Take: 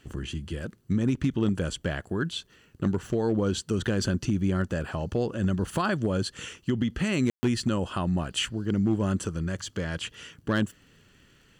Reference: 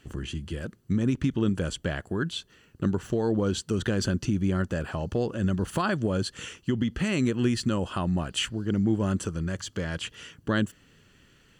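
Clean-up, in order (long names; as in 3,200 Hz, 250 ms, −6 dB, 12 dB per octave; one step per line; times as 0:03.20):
clipped peaks rebuilt −17 dBFS
click removal
ambience match 0:07.30–0:07.43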